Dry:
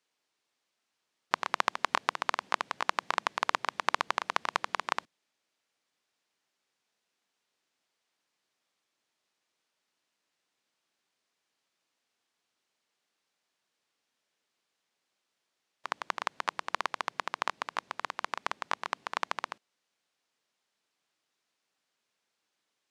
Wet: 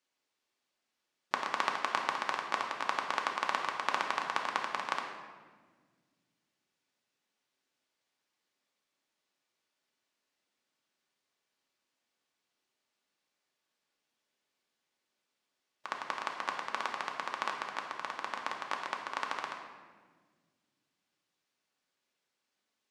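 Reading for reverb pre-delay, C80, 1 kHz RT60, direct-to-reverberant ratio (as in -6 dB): 3 ms, 6.5 dB, 1.3 s, 1.0 dB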